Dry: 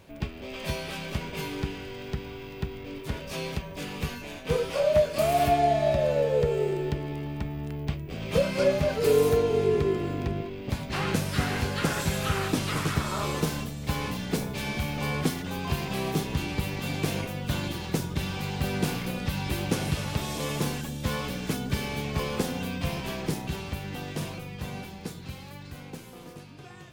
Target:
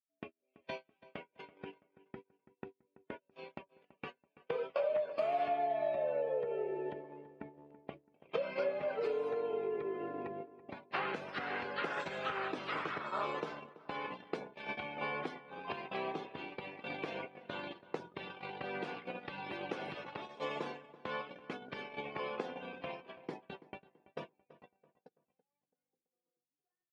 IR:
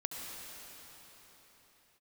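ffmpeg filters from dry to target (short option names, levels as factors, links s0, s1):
-filter_complex "[0:a]afftdn=nr=17:nf=-39,agate=range=0.00562:threshold=0.0316:ratio=16:detection=peak,acompressor=threshold=0.02:ratio=10,highpass=450,lowpass=2700,asplit=2[s0][s1];[s1]adelay=332,lowpass=f=2000:p=1,volume=0.141,asplit=2[s2][s3];[s3]adelay=332,lowpass=f=2000:p=1,volume=0.39,asplit=2[s4][s5];[s5]adelay=332,lowpass=f=2000:p=1,volume=0.39[s6];[s0][s2][s4][s6]amix=inputs=4:normalize=0,volume=1.68"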